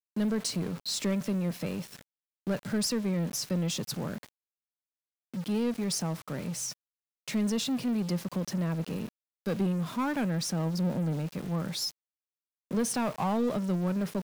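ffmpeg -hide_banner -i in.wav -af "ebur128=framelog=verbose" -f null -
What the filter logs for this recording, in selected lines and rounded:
Integrated loudness:
  I:         -31.3 LUFS
  Threshold: -41.7 LUFS
Loudness range:
  LRA:         2.5 LU
  Threshold: -52.3 LUFS
  LRA low:   -33.9 LUFS
  LRA high:  -31.4 LUFS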